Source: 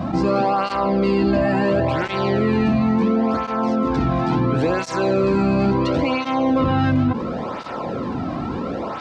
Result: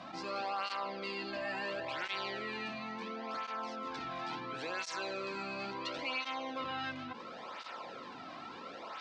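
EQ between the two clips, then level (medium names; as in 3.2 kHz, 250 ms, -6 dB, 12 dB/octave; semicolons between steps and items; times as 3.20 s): low-pass 3.9 kHz 12 dB/octave; differentiator; +1.0 dB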